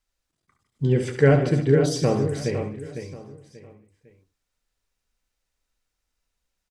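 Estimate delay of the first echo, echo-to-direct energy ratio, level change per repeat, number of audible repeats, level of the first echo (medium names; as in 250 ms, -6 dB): 69 ms, -4.5 dB, no regular repeats, 8, -9.0 dB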